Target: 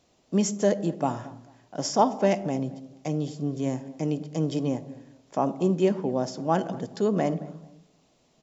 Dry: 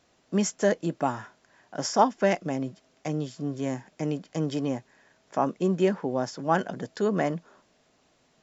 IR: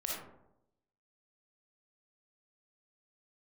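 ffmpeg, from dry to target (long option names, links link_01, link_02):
-filter_complex "[0:a]equalizer=frequency=1600:width_type=o:width=0.85:gain=-8.5,asplit=2[link_01][link_02];[link_02]adelay=221,lowpass=frequency=1800:poles=1,volume=-19dB,asplit=2[link_03][link_04];[link_04]adelay=221,lowpass=frequency=1800:poles=1,volume=0.28[link_05];[link_01][link_03][link_05]amix=inputs=3:normalize=0,asplit=2[link_06][link_07];[1:a]atrim=start_sample=2205,lowshelf=frequency=450:gain=11.5[link_08];[link_07][link_08]afir=irnorm=-1:irlink=0,volume=-18.5dB[link_09];[link_06][link_09]amix=inputs=2:normalize=0"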